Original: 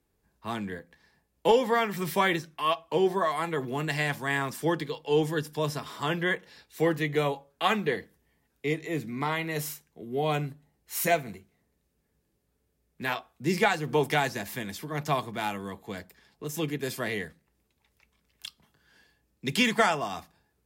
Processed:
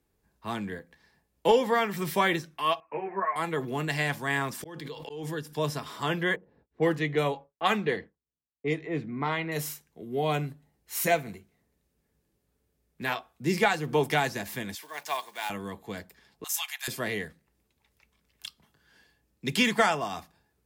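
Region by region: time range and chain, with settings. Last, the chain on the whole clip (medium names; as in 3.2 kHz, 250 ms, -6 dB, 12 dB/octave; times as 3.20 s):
2.80–3.36 s: steep low-pass 2.5 kHz 96 dB/octave + tilt EQ +3.5 dB/octave + three-phase chorus
4.37–5.57 s: slow attack 588 ms + swell ahead of each attack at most 28 dB/s
6.36–9.52 s: expander -55 dBFS + level-controlled noise filter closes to 460 Hz, open at -21 dBFS
14.75–15.50 s: block-companded coder 5-bit + high-pass 860 Hz + band-stop 1.3 kHz, Q 6
16.44–16.88 s: steep high-pass 710 Hz 96 dB/octave + treble shelf 2.7 kHz +10 dB
whole clip: none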